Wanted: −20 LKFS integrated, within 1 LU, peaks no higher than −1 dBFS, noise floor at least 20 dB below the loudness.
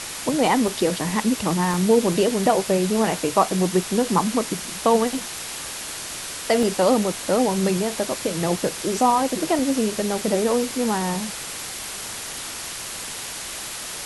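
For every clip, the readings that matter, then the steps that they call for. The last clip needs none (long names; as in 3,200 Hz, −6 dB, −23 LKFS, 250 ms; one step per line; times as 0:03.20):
number of dropouts 4; longest dropout 1.3 ms; background noise floor −33 dBFS; target noise floor −43 dBFS; integrated loudness −22.5 LKFS; sample peak −4.0 dBFS; target loudness −20.0 LKFS
→ repair the gap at 0:00.68/0:01.74/0:06.63/0:09.59, 1.3 ms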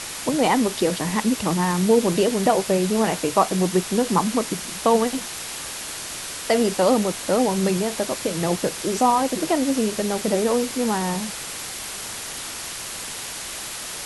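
number of dropouts 0; background noise floor −33 dBFS; target noise floor −43 dBFS
→ noise reduction from a noise print 10 dB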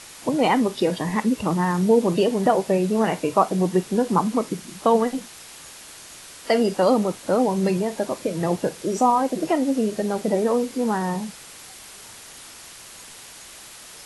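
background noise floor −43 dBFS; integrated loudness −22.0 LKFS; sample peak −4.0 dBFS; target loudness −20.0 LKFS
→ level +2 dB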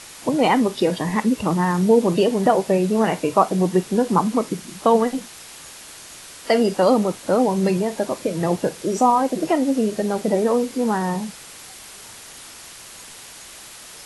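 integrated loudness −20.0 LKFS; sample peak −2.0 dBFS; background noise floor −41 dBFS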